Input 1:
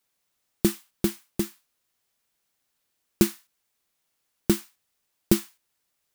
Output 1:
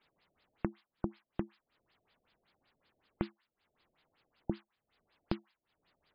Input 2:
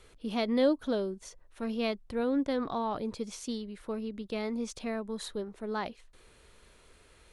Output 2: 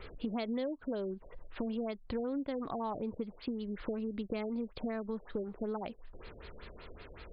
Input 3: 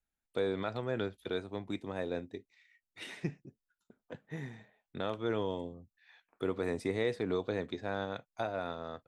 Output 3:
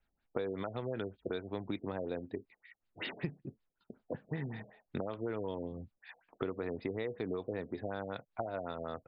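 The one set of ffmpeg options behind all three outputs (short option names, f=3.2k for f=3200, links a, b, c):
-af "acompressor=threshold=-44dB:ratio=8,afftfilt=real='re*lt(b*sr/1024,690*pow(5200/690,0.5+0.5*sin(2*PI*5.3*pts/sr)))':imag='im*lt(b*sr/1024,690*pow(5200/690,0.5+0.5*sin(2*PI*5.3*pts/sr)))':win_size=1024:overlap=0.75,volume=10dB"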